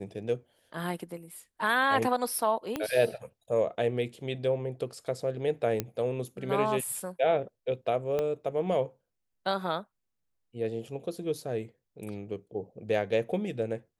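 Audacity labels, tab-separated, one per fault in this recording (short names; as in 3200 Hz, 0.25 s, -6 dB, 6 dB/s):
2.760000	2.760000	pop -16 dBFS
5.800000	5.800000	pop -14 dBFS
8.190000	8.190000	pop -18 dBFS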